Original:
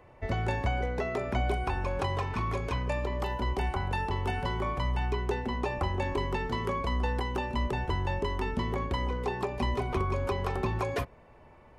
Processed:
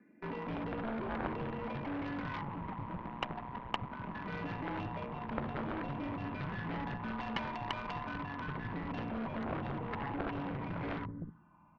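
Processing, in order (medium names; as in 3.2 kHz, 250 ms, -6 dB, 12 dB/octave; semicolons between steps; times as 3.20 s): 2.41–4.15 s: resonances exaggerated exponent 2; on a send at -20 dB: reverberation RT60 0.65 s, pre-delay 4 ms; on the sum: phase shifter stages 12, 0.23 Hz, lowest notch 660–1900 Hz; in parallel at -8 dB: companded quantiser 2-bit; on the sum: mistuned SSB -270 Hz 270–3100 Hz; peak limiter -27.5 dBFS, peak gain reduction 9.5 dB; bands offset in time highs, lows 250 ms, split 200 Hz; dynamic bell 860 Hz, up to +6 dB, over -57 dBFS, Q 1.7; small resonant body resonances 210/980 Hz, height 18 dB, ringing for 30 ms; Chebyshev shaper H 3 -6 dB, 8 -29 dB, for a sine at -12.5 dBFS; trim -2.5 dB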